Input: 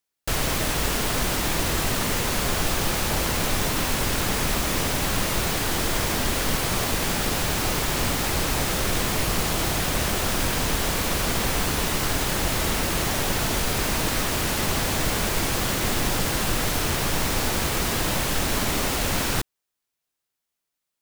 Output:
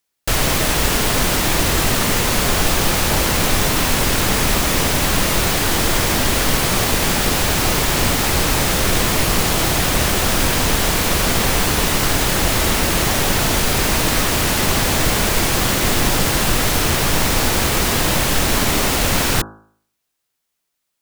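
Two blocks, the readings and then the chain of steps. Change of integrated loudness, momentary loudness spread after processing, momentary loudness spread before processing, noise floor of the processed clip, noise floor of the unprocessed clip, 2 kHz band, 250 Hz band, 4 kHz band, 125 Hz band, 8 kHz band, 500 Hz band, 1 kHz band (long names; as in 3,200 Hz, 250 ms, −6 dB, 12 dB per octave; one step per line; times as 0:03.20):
+7.5 dB, 0 LU, 0 LU, −75 dBFS, −83 dBFS, +7.5 dB, +7.0 dB, +7.5 dB, +7.0 dB, +7.5 dB, +7.0 dB, +7.0 dB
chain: hum removal 53.87 Hz, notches 31
level +7.5 dB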